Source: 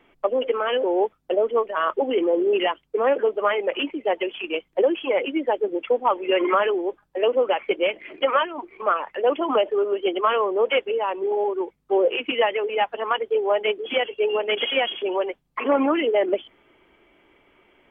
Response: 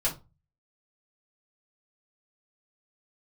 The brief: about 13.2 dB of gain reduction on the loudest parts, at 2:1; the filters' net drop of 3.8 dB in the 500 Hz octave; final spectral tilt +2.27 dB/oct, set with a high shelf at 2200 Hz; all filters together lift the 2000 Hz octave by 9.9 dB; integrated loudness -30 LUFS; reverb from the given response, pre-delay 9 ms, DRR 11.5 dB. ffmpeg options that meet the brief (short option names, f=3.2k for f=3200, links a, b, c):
-filter_complex "[0:a]equalizer=f=500:t=o:g=-5.5,equalizer=f=2k:t=o:g=7.5,highshelf=f=2.2k:g=8.5,acompressor=threshold=-37dB:ratio=2,asplit=2[a][b];[1:a]atrim=start_sample=2205,adelay=9[c];[b][c]afir=irnorm=-1:irlink=0,volume=-19dB[d];[a][d]amix=inputs=2:normalize=0,volume=1.5dB"